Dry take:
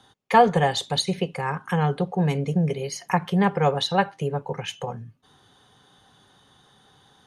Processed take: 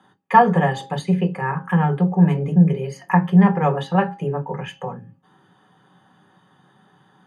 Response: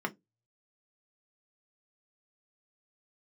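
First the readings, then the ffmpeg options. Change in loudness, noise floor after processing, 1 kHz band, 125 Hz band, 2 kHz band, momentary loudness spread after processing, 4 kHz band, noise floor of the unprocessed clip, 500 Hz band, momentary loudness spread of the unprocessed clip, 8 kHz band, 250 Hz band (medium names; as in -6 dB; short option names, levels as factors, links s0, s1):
+5.0 dB, -58 dBFS, +3.5 dB, +6.5 dB, +2.5 dB, 13 LU, -10.0 dB, -59 dBFS, +0.5 dB, 12 LU, no reading, +8.0 dB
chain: -filter_complex "[0:a]bandreject=f=269.7:t=h:w=4,bandreject=f=539.4:t=h:w=4,bandreject=f=809.1:t=h:w=4[s0];[1:a]atrim=start_sample=2205,asetrate=38808,aresample=44100[s1];[s0][s1]afir=irnorm=-1:irlink=0,volume=0.596"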